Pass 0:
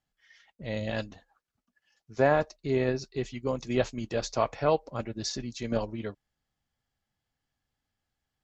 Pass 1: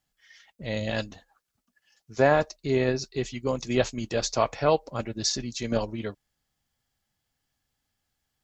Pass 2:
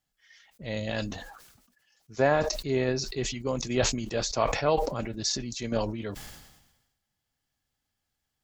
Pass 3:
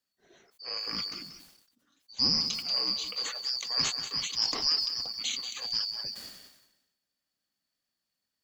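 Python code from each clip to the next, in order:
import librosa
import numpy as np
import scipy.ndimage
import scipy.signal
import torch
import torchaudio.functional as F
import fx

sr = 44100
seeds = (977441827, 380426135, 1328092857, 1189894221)

y1 = fx.high_shelf(x, sr, hz=4100.0, db=8.0)
y1 = F.gain(torch.from_numpy(y1), 2.5).numpy()
y2 = fx.sustainer(y1, sr, db_per_s=54.0)
y2 = F.gain(torch.from_numpy(y2), -3.0).numpy()
y3 = fx.band_shuffle(y2, sr, order='2341')
y3 = fx.echo_crushed(y3, sr, ms=185, feedback_pct=35, bits=8, wet_db=-10.5)
y3 = F.gain(torch.from_numpy(y3), -3.5).numpy()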